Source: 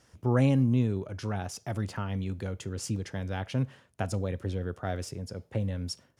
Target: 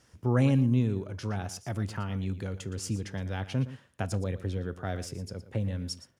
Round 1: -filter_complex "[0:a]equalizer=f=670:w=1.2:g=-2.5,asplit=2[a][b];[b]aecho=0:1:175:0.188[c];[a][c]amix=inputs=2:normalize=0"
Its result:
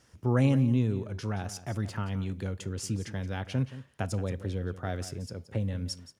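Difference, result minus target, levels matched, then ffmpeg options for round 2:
echo 59 ms late
-filter_complex "[0:a]equalizer=f=670:w=1.2:g=-2.5,asplit=2[a][b];[b]aecho=0:1:116:0.188[c];[a][c]amix=inputs=2:normalize=0"

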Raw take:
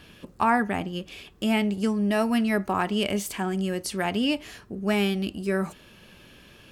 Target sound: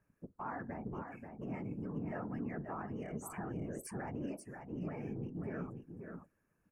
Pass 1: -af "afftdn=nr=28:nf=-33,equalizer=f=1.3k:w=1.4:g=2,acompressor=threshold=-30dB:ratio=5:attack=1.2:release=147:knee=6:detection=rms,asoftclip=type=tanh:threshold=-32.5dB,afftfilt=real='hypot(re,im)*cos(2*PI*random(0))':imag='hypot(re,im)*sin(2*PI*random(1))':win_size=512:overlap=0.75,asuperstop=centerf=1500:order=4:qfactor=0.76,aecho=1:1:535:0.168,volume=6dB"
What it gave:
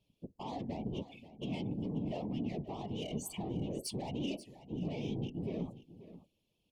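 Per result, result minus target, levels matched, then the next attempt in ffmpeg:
4000 Hz band +17.0 dB; compressor: peak gain reduction -6.5 dB; echo-to-direct -9 dB
-af "afftdn=nr=28:nf=-33,equalizer=f=1.3k:w=1.4:g=2,acompressor=threshold=-30dB:ratio=5:attack=1.2:release=147:knee=6:detection=rms,asoftclip=type=tanh:threshold=-32.5dB,afftfilt=real='hypot(re,im)*cos(2*PI*random(0))':imag='hypot(re,im)*sin(2*PI*random(1))':win_size=512:overlap=0.75,asuperstop=centerf=3600:order=4:qfactor=0.76,aecho=1:1:535:0.168,volume=6dB"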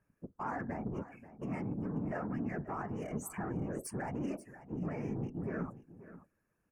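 compressor: peak gain reduction -6.5 dB; echo-to-direct -9 dB
-af "afftdn=nr=28:nf=-33,equalizer=f=1.3k:w=1.4:g=2,acompressor=threshold=-38dB:ratio=5:attack=1.2:release=147:knee=6:detection=rms,asoftclip=type=tanh:threshold=-32.5dB,afftfilt=real='hypot(re,im)*cos(2*PI*random(0))':imag='hypot(re,im)*sin(2*PI*random(1))':win_size=512:overlap=0.75,asuperstop=centerf=3600:order=4:qfactor=0.76,aecho=1:1:535:0.168,volume=6dB"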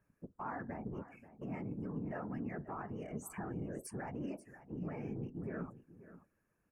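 echo-to-direct -9 dB
-af "afftdn=nr=28:nf=-33,equalizer=f=1.3k:w=1.4:g=2,acompressor=threshold=-38dB:ratio=5:attack=1.2:release=147:knee=6:detection=rms,asoftclip=type=tanh:threshold=-32.5dB,afftfilt=real='hypot(re,im)*cos(2*PI*random(0))':imag='hypot(re,im)*sin(2*PI*random(1))':win_size=512:overlap=0.75,asuperstop=centerf=3600:order=4:qfactor=0.76,aecho=1:1:535:0.473,volume=6dB"

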